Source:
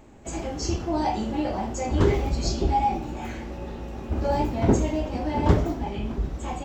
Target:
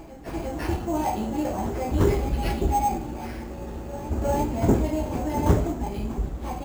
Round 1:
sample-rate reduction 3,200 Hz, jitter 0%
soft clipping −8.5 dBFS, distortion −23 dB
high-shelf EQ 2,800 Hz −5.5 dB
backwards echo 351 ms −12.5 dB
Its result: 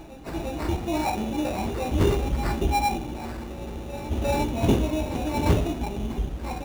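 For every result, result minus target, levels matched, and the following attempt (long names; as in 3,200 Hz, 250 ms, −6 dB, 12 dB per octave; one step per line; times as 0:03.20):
soft clipping: distortion +12 dB; sample-rate reduction: distortion +5 dB
sample-rate reduction 3,200 Hz, jitter 0%
soft clipping −1 dBFS, distortion −35 dB
high-shelf EQ 2,800 Hz −5.5 dB
backwards echo 351 ms −12.5 dB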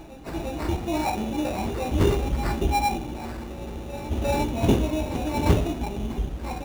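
sample-rate reduction: distortion +5 dB
sample-rate reduction 7,200 Hz, jitter 0%
soft clipping −1 dBFS, distortion −35 dB
high-shelf EQ 2,800 Hz −5.5 dB
backwards echo 351 ms −12.5 dB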